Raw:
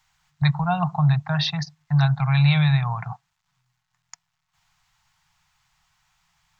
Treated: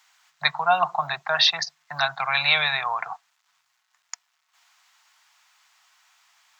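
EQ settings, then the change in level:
high-pass filter 380 Hz 24 dB per octave
parametric band 830 Hz −5 dB 0.48 octaves
+7.5 dB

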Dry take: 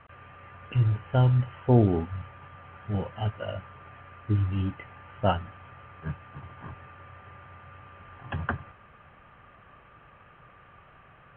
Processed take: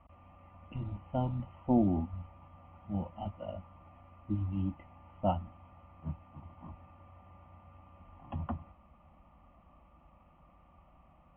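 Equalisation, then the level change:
low-pass filter 2,200 Hz 12 dB per octave
parametric band 67 Hz +10.5 dB 2.7 octaves
phaser with its sweep stopped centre 430 Hz, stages 6
−5.0 dB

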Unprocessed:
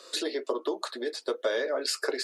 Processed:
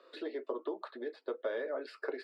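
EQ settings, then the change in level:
dynamic equaliser 6,500 Hz, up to −7 dB, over −57 dBFS, Q 7.6
high-frequency loss of the air 470 metres
−6.0 dB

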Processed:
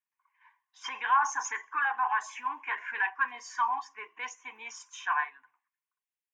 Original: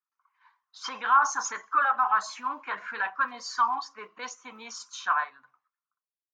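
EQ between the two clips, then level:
low-pass filter 2,400 Hz 6 dB per octave
tilt shelving filter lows −9.5 dB
phaser with its sweep stopped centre 870 Hz, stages 8
+1.0 dB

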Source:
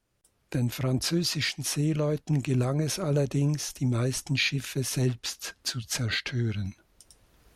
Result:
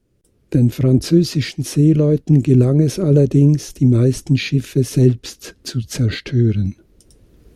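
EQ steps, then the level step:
low shelf with overshoot 570 Hz +11.5 dB, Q 1.5
+1.5 dB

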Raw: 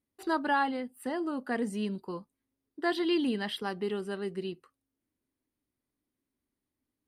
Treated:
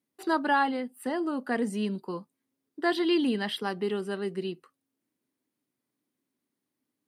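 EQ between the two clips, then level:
high-pass filter 130 Hz 24 dB per octave
+3.0 dB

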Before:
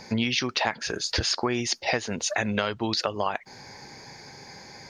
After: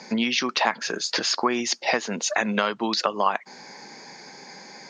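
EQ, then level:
dynamic equaliser 1,100 Hz, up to +6 dB, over −42 dBFS, Q 2.6
elliptic band-pass filter 190–7,800 Hz, stop band 40 dB
+2.5 dB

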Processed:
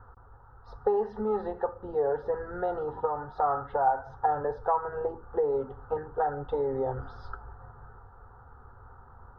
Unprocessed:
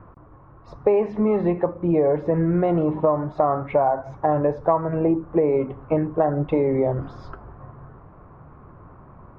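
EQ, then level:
parametric band 1,100 Hz +7 dB 0.95 octaves
phaser with its sweep stopped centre 620 Hz, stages 6
phaser with its sweep stopped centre 1,600 Hz, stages 8
0.0 dB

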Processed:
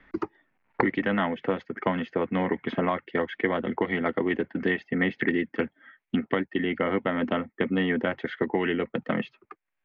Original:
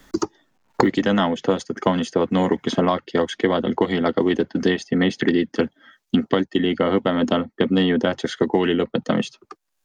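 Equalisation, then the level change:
transistor ladder low-pass 2,500 Hz, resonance 55%
+2.5 dB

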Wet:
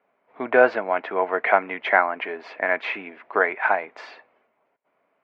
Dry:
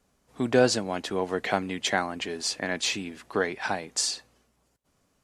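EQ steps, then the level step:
dynamic equaliser 1,400 Hz, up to +7 dB, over −42 dBFS, Q 1.1
loudspeaker in its box 340–2,500 Hz, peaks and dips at 430 Hz +3 dB, 650 Hz +9 dB, 950 Hz +6 dB, 1,400 Hz +3 dB, 2,200 Hz +8 dB
0.0 dB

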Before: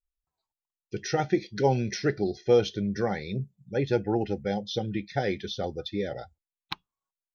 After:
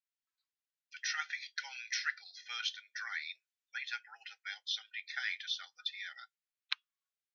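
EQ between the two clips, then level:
Butterworth high-pass 1,400 Hz 36 dB per octave
high-frequency loss of the air 80 metres
+2.0 dB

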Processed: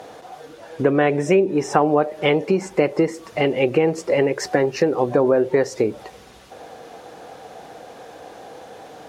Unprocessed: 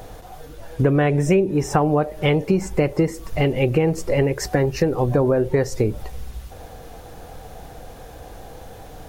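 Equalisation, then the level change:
high-pass filter 270 Hz 12 dB per octave
high-frequency loss of the air 53 metres
+3.0 dB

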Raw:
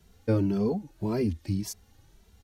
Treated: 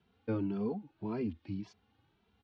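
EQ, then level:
loudspeaker in its box 150–3,300 Hz, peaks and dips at 170 Hz −5 dB, 370 Hz −4 dB, 580 Hz −8 dB, 1,900 Hz −6 dB
−5.0 dB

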